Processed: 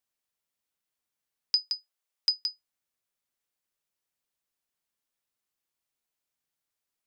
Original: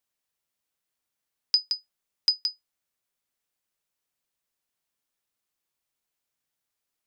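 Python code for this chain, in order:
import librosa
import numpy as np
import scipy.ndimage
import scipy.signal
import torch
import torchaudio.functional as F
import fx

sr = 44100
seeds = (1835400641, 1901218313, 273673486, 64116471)

y = fx.highpass(x, sr, hz=440.0, slope=12, at=(1.57, 2.41))
y = F.gain(torch.from_numpy(y), -3.0).numpy()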